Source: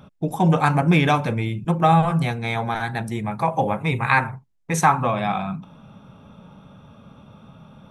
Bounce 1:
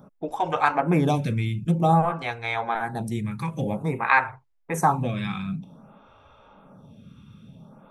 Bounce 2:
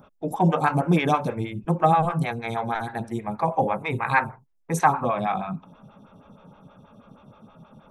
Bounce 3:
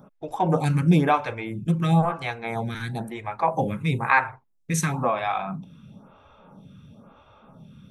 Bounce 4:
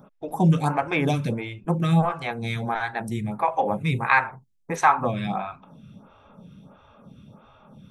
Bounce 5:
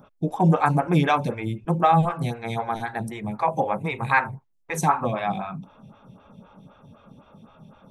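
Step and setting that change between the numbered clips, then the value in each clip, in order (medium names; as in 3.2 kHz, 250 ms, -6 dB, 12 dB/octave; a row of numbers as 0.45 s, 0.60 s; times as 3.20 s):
lamp-driven phase shifter, rate: 0.52 Hz, 6.3 Hz, 1 Hz, 1.5 Hz, 3.9 Hz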